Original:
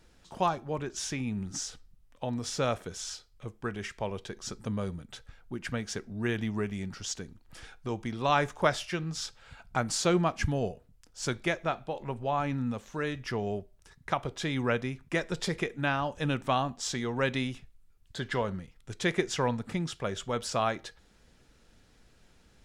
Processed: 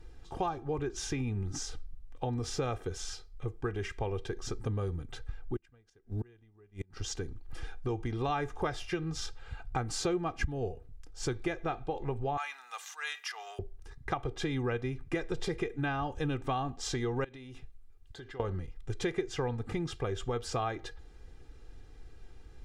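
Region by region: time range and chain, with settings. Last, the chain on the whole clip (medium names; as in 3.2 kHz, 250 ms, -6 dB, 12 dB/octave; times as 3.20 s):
5.56–6.97 s: block-companded coder 7-bit + inverted gate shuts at -27 dBFS, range -33 dB
12.37–13.59 s: transient shaper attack -11 dB, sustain +4 dB + high-pass 840 Hz 24 dB/octave + tilt EQ +3.5 dB/octave
17.24–18.40 s: bass shelf 120 Hz -8.5 dB + compression 12:1, threshold -45 dBFS
whole clip: tilt EQ -2 dB/octave; comb 2.5 ms, depth 66%; compression 4:1, threshold -30 dBFS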